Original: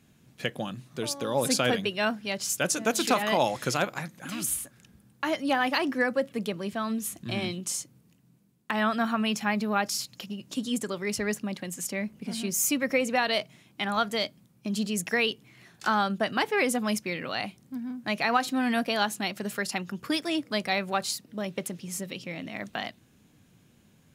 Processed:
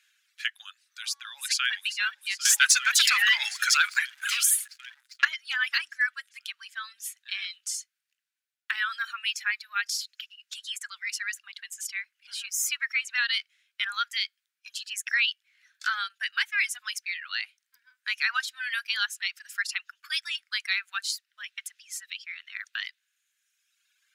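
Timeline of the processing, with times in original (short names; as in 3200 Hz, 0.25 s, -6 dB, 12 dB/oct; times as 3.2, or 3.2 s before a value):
1.08–1.74 echo throw 0.4 s, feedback 80%, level -11.5 dB
2.45–5.25 sample leveller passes 3
whole clip: high shelf 7700 Hz -10 dB; reverb removal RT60 1.6 s; elliptic high-pass 1500 Hz, stop band 70 dB; gain +5 dB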